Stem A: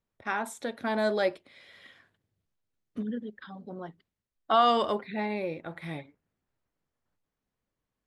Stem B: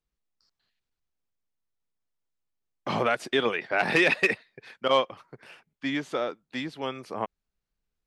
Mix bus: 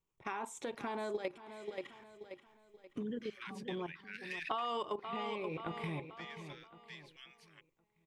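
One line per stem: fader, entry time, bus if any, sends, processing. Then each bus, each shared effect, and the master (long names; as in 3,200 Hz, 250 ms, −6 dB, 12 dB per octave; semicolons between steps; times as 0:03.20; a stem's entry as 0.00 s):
+3.0 dB, 0.00 s, no send, echo send −13 dB, EQ curve with evenly spaced ripples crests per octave 0.71, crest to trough 9 dB; output level in coarse steps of 13 dB
−17.0 dB, 0.35 s, no send, no echo send, Butterworth high-pass 1,600 Hz 48 dB per octave; multiband upward and downward compressor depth 40%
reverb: not used
echo: repeating echo 531 ms, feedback 37%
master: downward compressor 5 to 1, threshold −36 dBFS, peak gain reduction 14 dB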